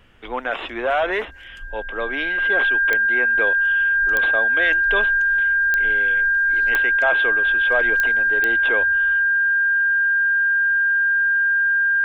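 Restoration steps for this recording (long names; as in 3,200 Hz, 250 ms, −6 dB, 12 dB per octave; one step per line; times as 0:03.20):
click removal
notch filter 1,600 Hz, Q 30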